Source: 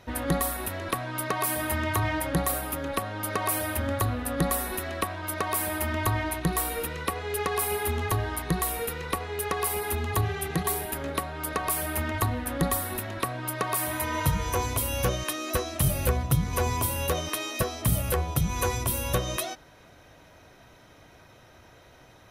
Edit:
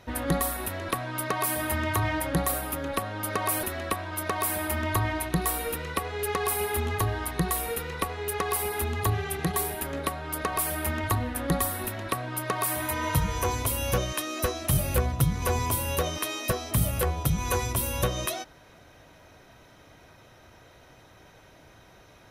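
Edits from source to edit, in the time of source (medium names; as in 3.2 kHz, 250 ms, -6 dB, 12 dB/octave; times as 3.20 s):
3.63–4.74 s: delete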